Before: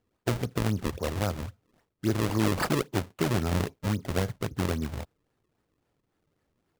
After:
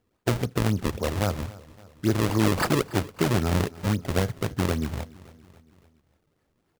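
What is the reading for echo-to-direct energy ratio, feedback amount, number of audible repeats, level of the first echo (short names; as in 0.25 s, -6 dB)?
-19.0 dB, 56%, 3, -20.5 dB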